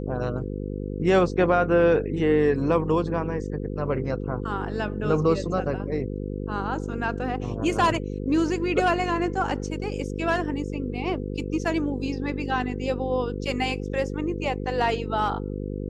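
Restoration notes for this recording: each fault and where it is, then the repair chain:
buzz 50 Hz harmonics 10 -31 dBFS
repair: de-hum 50 Hz, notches 10

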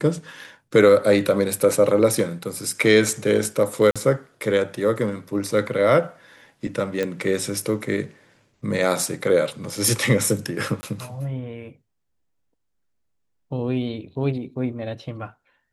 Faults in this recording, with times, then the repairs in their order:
3.91–3.96 s: dropout 46 ms
7.03 s: pop -12 dBFS
10.81–10.83 s: dropout 20 ms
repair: de-click; interpolate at 3.91 s, 46 ms; interpolate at 10.81 s, 20 ms

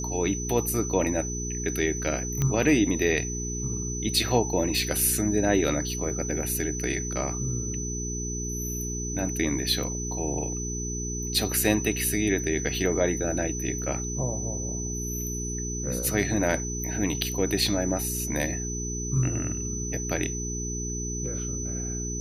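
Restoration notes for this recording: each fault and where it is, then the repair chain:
hum 60 Hz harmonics 7 -33 dBFS
whine 6 kHz -33 dBFS
2.42 s: pop -13 dBFS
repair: de-click; band-stop 6 kHz, Q 30; de-hum 60 Hz, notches 7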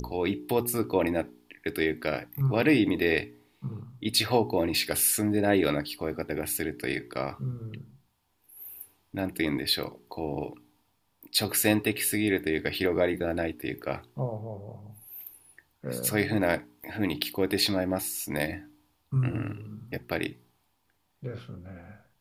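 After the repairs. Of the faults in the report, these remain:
nothing left

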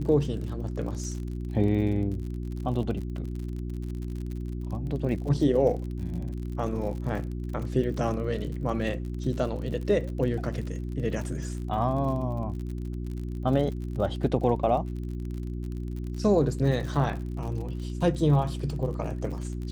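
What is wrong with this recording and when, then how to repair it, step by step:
crackle 49 per s -35 dBFS
hum 60 Hz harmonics 6 -33 dBFS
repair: de-click; de-hum 60 Hz, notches 6

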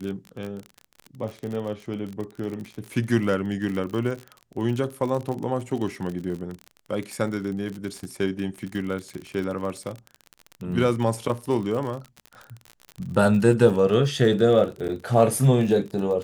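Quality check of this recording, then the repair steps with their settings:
crackle 45 per s -30 dBFS
14.88–14.89 s: dropout 9.1 ms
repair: de-click; interpolate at 14.88 s, 9.1 ms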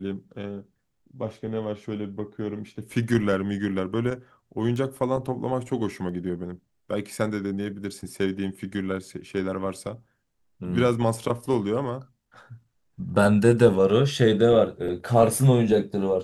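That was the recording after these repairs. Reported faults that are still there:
nothing left

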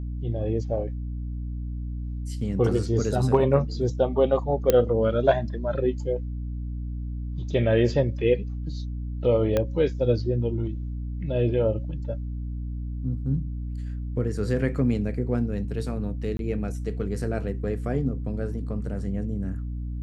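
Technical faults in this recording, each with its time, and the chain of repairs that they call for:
hum 60 Hz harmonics 5 -31 dBFS
4.70 s: pop -6 dBFS
9.57 s: pop -11 dBFS
16.37–16.39 s: dropout 22 ms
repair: de-click; de-hum 60 Hz, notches 5; interpolate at 16.37 s, 22 ms

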